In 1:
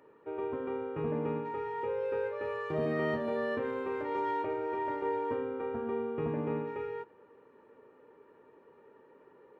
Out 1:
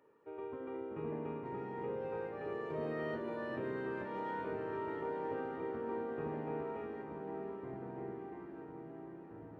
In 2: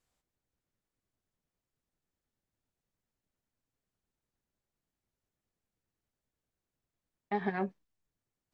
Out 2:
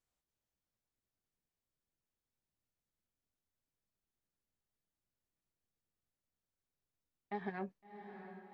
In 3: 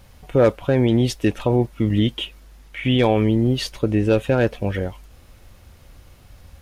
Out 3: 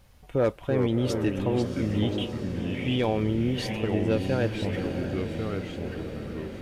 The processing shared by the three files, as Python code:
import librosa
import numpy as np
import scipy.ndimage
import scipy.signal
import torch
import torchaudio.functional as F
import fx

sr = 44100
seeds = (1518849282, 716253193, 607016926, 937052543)

y = fx.echo_diffused(x, sr, ms=691, feedback_pct=65, wet_db=-9.0)
y = fx.echo_pitch(y, sr, ms=284, semitones=-3, count=2, db_per_echo=-6.0)
y = F.gain(torch.from_numpy(y), -8.5).numpy()